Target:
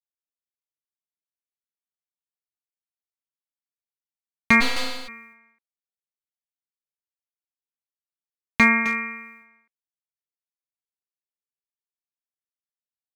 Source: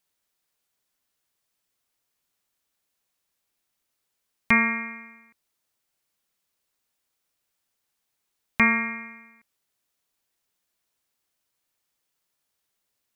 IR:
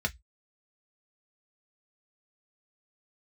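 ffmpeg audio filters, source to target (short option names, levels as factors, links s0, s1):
-filter_complex "[0:a]agate=range=0.0224:threshold=0.00251:ratio=3:detection=peak,acrossover=split=840[s0][s1];[s1]aeval=exprs='clip(val(0),-1,0.178)':c=same[s2];[s0][s2]amix=inputs=2:normalize=0,asplit=2[s3][s4];[s4]adelay=260,highpass=300,lowpass=3400,asoftclip=type=hard:threshold=0.188,volume=0.355[s5];[s3][s5]amix=inputs=2:normalize=0,asplit=3[s6][s7][s8];[s6]afade=t=out:st=4.6:d=0.02[s9];[s7]aeval=exprs='abs(val(0))':c=same,afade=t=in:st=4.6:d=0.02,afade=t=out:st=5.07:d=0.02[s10];[s8]afade=t=in:st=5.07:d=0.02[s11];[s9][s10][s11]amix=inputs=3:normalize=0,volume=1.5"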